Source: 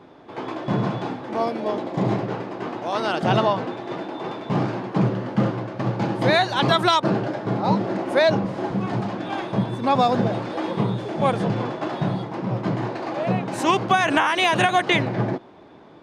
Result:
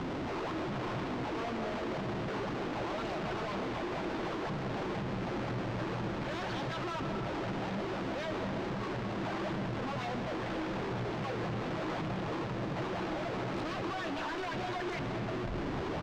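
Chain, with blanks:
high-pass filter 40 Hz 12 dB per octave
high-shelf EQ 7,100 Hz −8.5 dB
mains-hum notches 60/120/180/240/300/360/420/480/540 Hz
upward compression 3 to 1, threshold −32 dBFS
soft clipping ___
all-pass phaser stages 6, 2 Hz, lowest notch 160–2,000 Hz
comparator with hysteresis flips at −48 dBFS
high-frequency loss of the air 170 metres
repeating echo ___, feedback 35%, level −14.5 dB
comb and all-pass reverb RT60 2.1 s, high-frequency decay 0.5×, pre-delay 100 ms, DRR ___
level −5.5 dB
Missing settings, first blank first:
−22.5 dBFS, 1,168 ms, 6.5 dB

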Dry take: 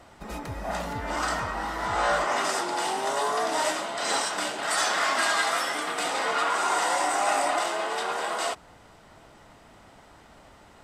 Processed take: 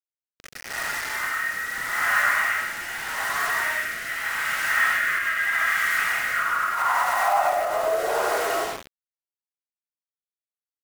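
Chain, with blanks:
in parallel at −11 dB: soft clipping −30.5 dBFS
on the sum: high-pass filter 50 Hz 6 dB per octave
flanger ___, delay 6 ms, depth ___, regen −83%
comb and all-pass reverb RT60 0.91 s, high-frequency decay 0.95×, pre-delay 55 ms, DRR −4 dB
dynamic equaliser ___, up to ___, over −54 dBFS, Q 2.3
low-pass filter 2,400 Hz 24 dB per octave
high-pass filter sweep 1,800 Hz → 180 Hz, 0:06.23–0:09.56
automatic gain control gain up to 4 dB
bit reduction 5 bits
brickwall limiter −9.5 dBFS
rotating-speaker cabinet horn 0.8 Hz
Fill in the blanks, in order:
0.43 Hz, 4.1 ms, 140 Hz, −4 dB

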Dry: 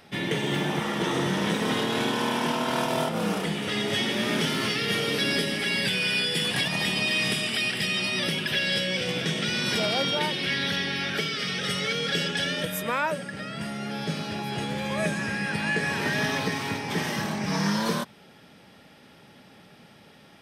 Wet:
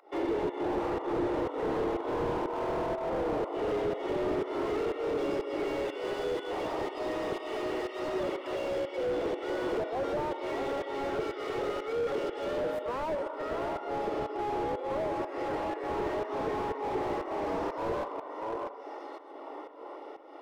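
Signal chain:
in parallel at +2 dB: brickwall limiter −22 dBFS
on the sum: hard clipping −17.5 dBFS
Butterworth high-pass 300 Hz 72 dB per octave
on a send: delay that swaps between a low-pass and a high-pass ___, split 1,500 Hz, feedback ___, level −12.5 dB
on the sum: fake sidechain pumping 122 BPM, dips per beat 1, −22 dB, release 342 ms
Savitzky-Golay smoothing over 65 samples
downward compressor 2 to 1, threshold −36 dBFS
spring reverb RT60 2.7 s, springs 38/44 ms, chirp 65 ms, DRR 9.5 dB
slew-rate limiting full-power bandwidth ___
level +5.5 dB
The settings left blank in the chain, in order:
639 ms, 55%, 11 Hz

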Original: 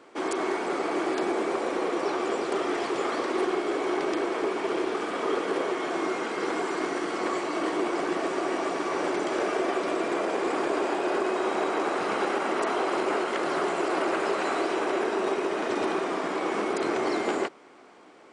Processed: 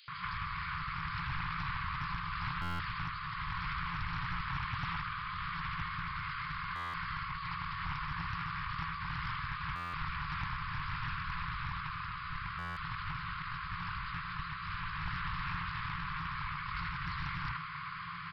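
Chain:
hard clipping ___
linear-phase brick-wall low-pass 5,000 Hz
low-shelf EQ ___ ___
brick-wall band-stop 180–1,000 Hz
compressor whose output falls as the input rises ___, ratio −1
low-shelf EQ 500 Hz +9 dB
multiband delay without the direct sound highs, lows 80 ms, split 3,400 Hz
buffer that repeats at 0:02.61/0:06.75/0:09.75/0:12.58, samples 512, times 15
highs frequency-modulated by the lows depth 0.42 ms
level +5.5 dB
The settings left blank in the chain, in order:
−28 dBFS, 240 Hz, +4 dB, −46 dBFS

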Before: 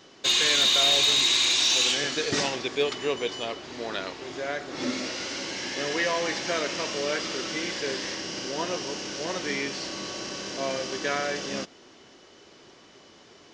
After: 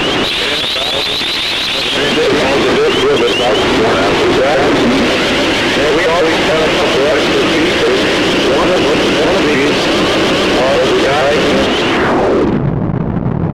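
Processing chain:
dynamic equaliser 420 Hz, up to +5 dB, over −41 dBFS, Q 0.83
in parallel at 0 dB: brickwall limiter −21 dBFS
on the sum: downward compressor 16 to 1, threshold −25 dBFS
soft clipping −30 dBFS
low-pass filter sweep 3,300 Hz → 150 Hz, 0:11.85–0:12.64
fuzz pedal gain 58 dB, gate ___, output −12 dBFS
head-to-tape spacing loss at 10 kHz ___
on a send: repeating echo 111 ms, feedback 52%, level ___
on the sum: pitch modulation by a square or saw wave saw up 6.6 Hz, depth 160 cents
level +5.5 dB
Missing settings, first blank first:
−57 dBFS, 20 dB, −21 dB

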